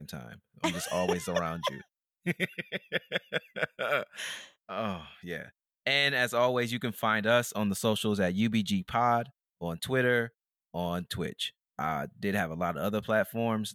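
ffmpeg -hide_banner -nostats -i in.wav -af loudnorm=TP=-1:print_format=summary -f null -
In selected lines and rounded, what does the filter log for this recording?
Input Integrated:    -30.9 LUFS
Input True Peak:     -13.1 dBTP
Input LRA:             4.8 LU
Input Threshold:     -41.2 LUFS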